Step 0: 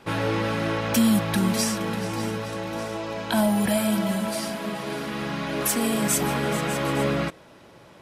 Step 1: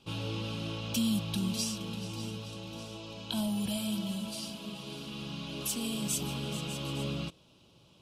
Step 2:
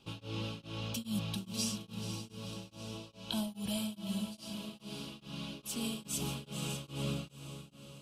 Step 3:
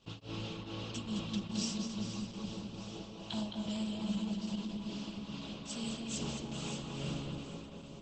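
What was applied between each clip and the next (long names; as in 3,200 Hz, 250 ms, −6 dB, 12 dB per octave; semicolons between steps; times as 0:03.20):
drawn EQ curve 140 Hz 0 dB, 690 Hz −11 dB, 1,200 Hz −9 dB, 1,900 Hz −22 dB, 2,800 Hz +4 dB, 14,000 Hz −5 dB; level −7 dB
feedback delay with all-pass diffusion 557 ms, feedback 47%, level −11 dB; tremolo along a rectified sine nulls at 2.4 Hz; level −1.5 dB
feedback echo with a low-pass in the loop 215 ms, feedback 71%, low-pass 3,400 Hz, level −3 dB; level −2 dB; Opus 10 kbit/s 48,000 Hz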